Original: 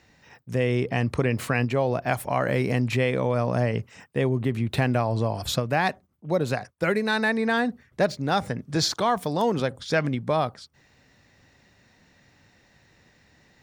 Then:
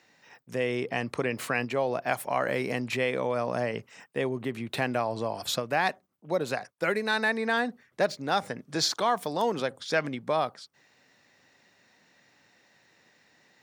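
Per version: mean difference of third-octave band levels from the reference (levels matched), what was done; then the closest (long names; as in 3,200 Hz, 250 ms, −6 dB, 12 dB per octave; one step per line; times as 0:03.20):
3.0 dB: high-pass filter 130 Hz
low-shelf EQ 210 Hz −12 dB
level −1.5 dB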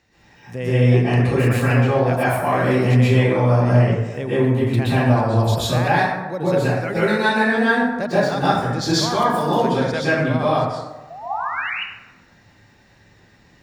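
9.0 dB: sound drawn into the spectrogram rise, 0:11.10–0:11.70, 650–3,000 Hz −31 dBFS
dense smooth reverb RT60 1.1 s, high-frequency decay 0.5×, pre-delay 110 ms, DRR −10 dB
level −4.5 dB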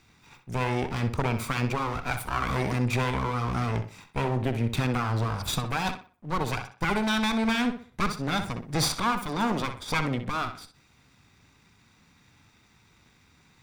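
7.0 dB: lower of the sound and its delayed copy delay 0.85 ms
on a send: tape delay 63 ms, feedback 34%, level −8 dB, low-pass 4,400 Hz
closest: first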